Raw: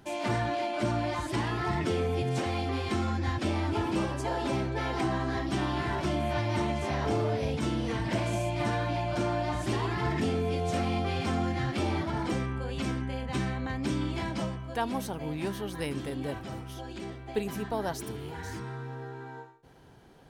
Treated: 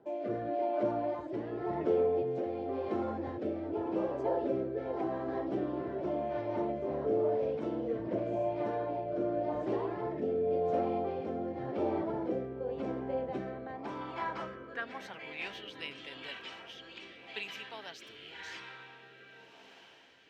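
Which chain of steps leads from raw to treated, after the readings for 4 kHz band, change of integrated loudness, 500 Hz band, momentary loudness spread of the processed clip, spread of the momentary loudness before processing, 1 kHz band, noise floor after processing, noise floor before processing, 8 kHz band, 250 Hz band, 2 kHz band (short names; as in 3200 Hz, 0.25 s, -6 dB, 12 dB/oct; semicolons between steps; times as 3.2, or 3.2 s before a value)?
-8.5 dB, -3.5 dB, +0.5 dB, 14 LU, 9 LU, -5.5 dB, -56 dBFS, -43 dBFS, under -15 dB, -5.0 dB, -8.5 dB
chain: bell 9800 Hz -12.5 dB 0.38 oct; in parallel at +1 dB: vocal rider within 5 dB; on the sum: band-pass sweep 500 Hz -> 2800 Hz, 13–15.63; diffused feedback echo 1.783 s, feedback 46%, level -15 dB; rotary speaker horn 0.9 Hz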